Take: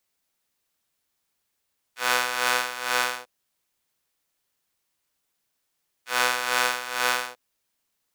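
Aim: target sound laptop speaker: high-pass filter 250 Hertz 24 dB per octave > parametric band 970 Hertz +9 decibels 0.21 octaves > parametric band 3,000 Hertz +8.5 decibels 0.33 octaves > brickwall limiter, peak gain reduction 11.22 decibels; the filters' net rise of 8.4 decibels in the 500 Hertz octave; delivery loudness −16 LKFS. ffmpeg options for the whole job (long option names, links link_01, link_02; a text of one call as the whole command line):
ffmpeg -i in.wav -af "highpass=frequency=250:width=0.5412,highpass=frequency=250:width=1.3066,equalizer=frequency=500:width_type=o:gain=9,equalizer=frequency=970:width_type=o:width=0.21:gain=9,equalizer=frequency=3000:width_type=o:width=0.33:gain=8.5,volume=11.5dB,alimiter=limit=-2dB:level=0:latency=1" out.wav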